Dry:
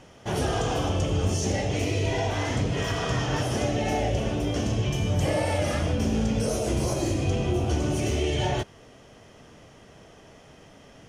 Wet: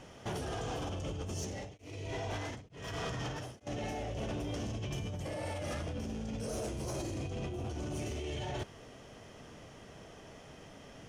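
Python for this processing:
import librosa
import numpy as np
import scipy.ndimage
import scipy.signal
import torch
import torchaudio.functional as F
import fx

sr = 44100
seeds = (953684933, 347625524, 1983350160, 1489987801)

y = fx.over_compress(x, sr, threshold_db=-30.0, ratio=-1.0)
y = 10.0 ** (-25.0 / 20.0) * np.tanh(y / 10.0 ** (-25.0 / 20.0))
y = fx.tremolo_abs(y, sr, hz=1.1, at=(1.33, 3.67))
y = y * 10.0 ** (-6.0 / 20.0)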